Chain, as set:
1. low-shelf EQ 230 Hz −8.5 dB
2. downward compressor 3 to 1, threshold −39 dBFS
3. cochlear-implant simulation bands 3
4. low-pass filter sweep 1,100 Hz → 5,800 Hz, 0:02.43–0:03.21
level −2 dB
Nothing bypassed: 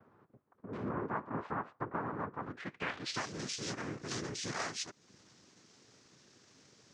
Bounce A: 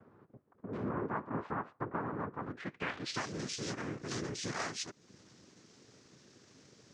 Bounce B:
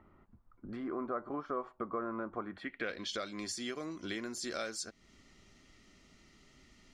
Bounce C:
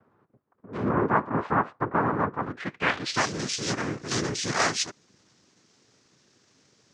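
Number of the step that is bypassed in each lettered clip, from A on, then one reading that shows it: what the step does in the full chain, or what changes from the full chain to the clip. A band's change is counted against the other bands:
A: 1, 250 Hz band +2.0 dB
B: 3, 125 Hz band −8.0 dB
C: 2, average gain reduction 10.0 dB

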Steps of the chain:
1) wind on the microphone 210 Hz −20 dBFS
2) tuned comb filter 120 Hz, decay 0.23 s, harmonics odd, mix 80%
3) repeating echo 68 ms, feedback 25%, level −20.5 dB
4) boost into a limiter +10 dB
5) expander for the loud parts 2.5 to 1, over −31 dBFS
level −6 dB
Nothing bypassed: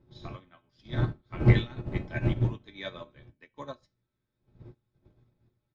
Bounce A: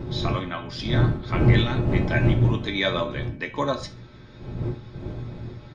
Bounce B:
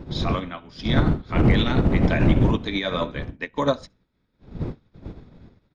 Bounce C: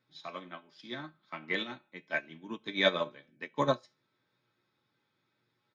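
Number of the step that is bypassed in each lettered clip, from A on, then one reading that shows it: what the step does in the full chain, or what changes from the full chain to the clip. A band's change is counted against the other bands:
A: 5, 125 Hz band −4.0 dB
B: 2, 125 Hz band −7.0 dB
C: 1, 125 Hz band −24.5 dB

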